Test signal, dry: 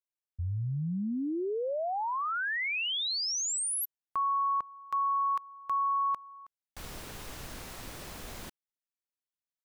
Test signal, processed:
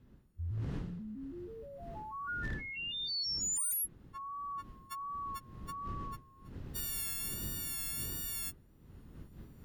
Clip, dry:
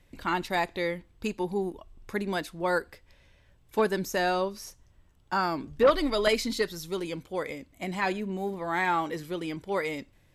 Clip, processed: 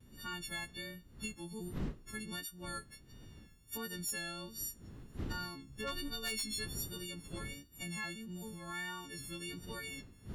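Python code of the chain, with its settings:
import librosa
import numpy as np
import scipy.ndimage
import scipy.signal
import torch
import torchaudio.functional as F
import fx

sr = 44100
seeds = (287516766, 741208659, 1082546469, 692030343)

y = fx.freq_snap(x, sr, grid_st=4)
y = fx.dmg_wind(y, sr, seeds[0], corner_hz=450.0, level_db=-39.0)
y = fx.recorder_agc(y, sr, target_db=-15.5, rise_db_per_s=9.5, max_gain_db=30)
y = fx.tone_stack(y, sr, knobs='6-0-2')
y = fx.wow_flutter(y, sr, seeds[1], rate_hz=1.4, depth_cents=47.0)
y = fx.notch(y, sr, hz=2300.0, q=12.0)
y = fx.dynamic_eq(y, sr, hz=5300.0, q=1.3, threshold_db=-54.0, ratio=4.0, max_db=-5)
y = 10.0 ** (-34.5 / 20.0) * (np.abs((y / 10.0 ** (-34.5 / 20.0) + 3.0) % 4.0 - 2.0) - 1.0)
y = F.gain(torch.from_numpy(y), 4.0).numpy()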